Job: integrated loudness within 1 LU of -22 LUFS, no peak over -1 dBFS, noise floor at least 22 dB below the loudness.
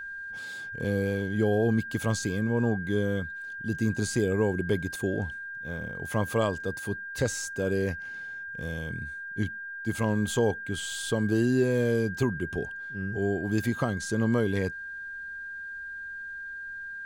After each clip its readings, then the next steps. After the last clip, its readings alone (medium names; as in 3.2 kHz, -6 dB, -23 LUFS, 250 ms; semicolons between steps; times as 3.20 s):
steady tone 1.6 kHz; tone level -36 dBFS; loudness -29.5 LUFS; peak level -14.0 dBFS; loudness target -22.0 LUFS
-> band-stop 1.6 kHz, Q 30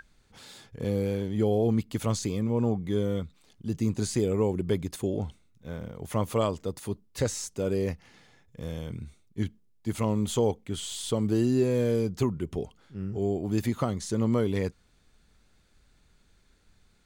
steady tone not found; loudness -29.5 LUFS; peak level -14.5 dBFS; loudness target -22.0 LUFS
-> trim +7.5 dB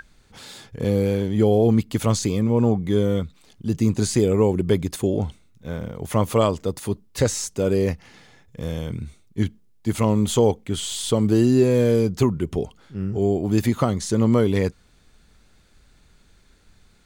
loudness -22.0 LUFS; peak level -7.0 dBFS; noise floor -56 dBFS